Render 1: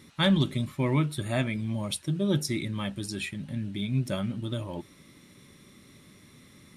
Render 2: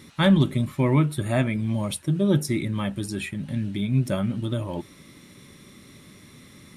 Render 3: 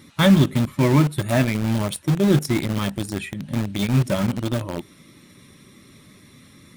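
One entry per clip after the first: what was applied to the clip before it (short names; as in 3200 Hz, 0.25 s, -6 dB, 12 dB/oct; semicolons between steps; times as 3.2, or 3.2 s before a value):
dynamic EQ 4600 Hz, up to -8 dB, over -49 dBFS, Q 0.73; gain +5.5 dB
bin magnitudes rounded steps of 15 dB; in parallel at -5 dB: bit-crush 4-bit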